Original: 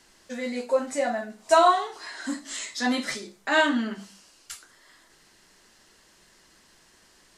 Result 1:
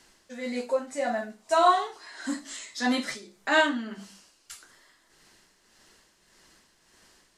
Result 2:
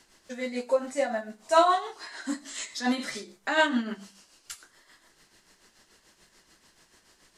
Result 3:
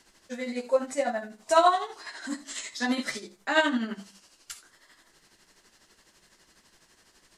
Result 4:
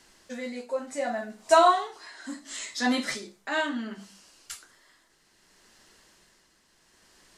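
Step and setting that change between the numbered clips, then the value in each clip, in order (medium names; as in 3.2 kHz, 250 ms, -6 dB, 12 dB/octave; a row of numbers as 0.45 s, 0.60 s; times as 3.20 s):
tremolo, rate: 1.7 Hz, 6.9 Hz, 12 Hz, 0.68 Hz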